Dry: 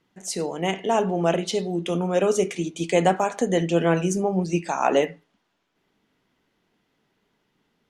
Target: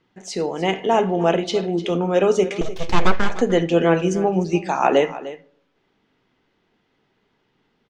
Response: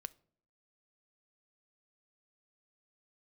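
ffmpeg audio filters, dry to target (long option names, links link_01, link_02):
-filter_complex "[0:a]asettb=1/sr,asplit=3[link_01][link_02][link_03];[link_01]atrim=end=2.614[link_04];[link_02]atrim=start=2.61:end=3.3,asetpts=PTS-STARTPTS,afade=type=in:duration=0.004:curve=qsin,afade=type=out:start_time=0.686:duration=0.004:curve=qsin,aeval=exprs='abs(val(0))':channel_layout=same[link_05];[link_03]atrim=start=3.296[link_06];[link_04][link_05]acrossfade=duration=0.004:curve1=hsin:curve2=qsin[link_07];[link_07][link_06]acrossfade=duration=0.004:curve1=qsin:curve2=hsin,aecho=1:1:301:0.168,asplit=2[link_08][link_09];[1:a]atrim=start_sample=2205,asetrate=36162,aresample=44100,lowpass=5500[link_10];[link_09][link_10]afir=irnorm=-1:irlink=0,volume=16.5dB[link_11];[link_08][link_11]amix=inputs=2:normalize=0,volume=-11dB"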